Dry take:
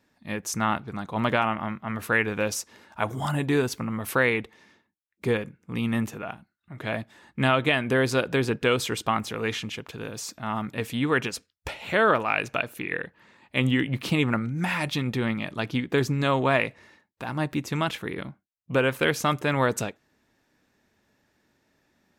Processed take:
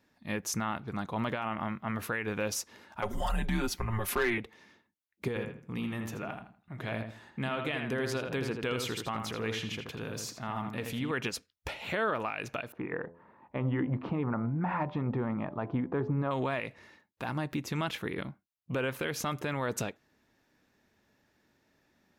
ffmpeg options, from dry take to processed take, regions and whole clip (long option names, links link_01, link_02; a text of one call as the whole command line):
ffmpeg -i in.wav -filter_complex "[0:a]asettb=1/sr,asplit=3[link_01][link_02][link_03];[link_01]atrim=end=3.024[link_04];[link_02]atrim=start=3.02:end=4.38,asetpts=PTS-STARTPTS,afade=type=in:duration=0.004:curve=qsin,afade=type=out:start_time=1.356:duration=0.004:curve=qsin,aecho=1:1:6:0.97,atrim=end_sample=59976,afreqshift=-110,volume=12.5dB,asoftclip=hard,volume=-12.5dB[link_05];[link_03]atrim=start=4.376[link_06];[link_04][link_05]acrossfade=duration=0.004:curve1=hsin:curve2=qsin[link_07];[link_07][link_06]acrossfade=duration=0.004:curve1=qsin:curve2=hsin,asettb=1/sr,asplit=3[link_08][link_09][link_10];[link_08]atrim=end=5.284[link_11];[link_09]atrim=start=5.28:end=11.11,asetpts=PTS-STARTPTS,afade=type=in:duration=0.004:curve=qsin,afade=type=out:start_time=5.826:duration=0.004:curve=qsin,acompressor=threshold=-33dB:ratio=2:attack=3.2:release=140:knee=1:detection=peak,asplit=2[link_12][link_13];[link_13]adelay=81,lowpass=frequency=3100:poles=1,volume=-5dB,asplit=2[link_14][link_15];[link_15]adelay=81,lowpass=frequency=3100:poles=1,volume=0.29,asplit=2[link_16][link_17];[link_17]adelay=81,lowpass=frequency=3100:poles=1,volume=0.29,asplit=2[link_18][link_19];[link_19]adelay=81,lowpass=frequency=3100:poles=1,volume=0.29[link_20];[link_12][link_14][link_16][link_18][link_20]amix=inputs=5:normalize=0,atrim=end_sample=257103[link_21];[link_10]atrim=start=11.106[link_22];[link_11][link_21]acrossfade=duration=0.004:curve1=hsin:curve2=qsin[link_23];[link_23][link_22]acrossfade=duration=0.004:curve1=qsin:curve2=hsin,asettb=1/sr,asplit=3[link_24][link_25][link_26];[link_24]atrim=end=12.724[link_27];[link_25]atrim=start=12.72:end=16.31,asetpts=PTS-STARTPTS,afade=type=in:duration=0.004:curve=qsin,afade=type=out:start_time=3.586:duration=0.004:curve=qsin,lowpass=frequency=1000:width_type=q:width=1.7,bandreject=frequency=84.95:width_type=h:width=4,bandreject=frequency=169.9:width_type=h:width=4,bandreject=frequency=254.85:width_type=h:width=4,bandreject=frequency=339.8:width_type=h:width=4,bandreject=frequency=424.75:width_type=h:width=4,bandreject=frequency=509.7:width_type=h:width=4,bandreject=frequency=594.65:width_type=h:width=4,bandreject=frequency=679.6:width_type=h:width=4,bandreject=frequency=764.55:width_type=h:width=4,bandreject=frequency=849.5:width_type=h:width=4,bandreject=frequency=934.45:width_type=h:width=4,bandreject=frequency=1019.4:width_type=h:width=4[link_28];[link_26]atrim=start=16.306[link_29];[link_27][link_28]acrossfade=duration=0.004:curve1=hsin:curve2=qsin[link_30];[link_30][link_29]acrossfade=duration=0.004:curve1=qsin:curve2=hsin,equalizer=frequency=8200:width_type=o:width=0.38:gain=-4,alimiter=limit=-20dB:level=0:latency=1:release=111,volume=-2dB" out.wav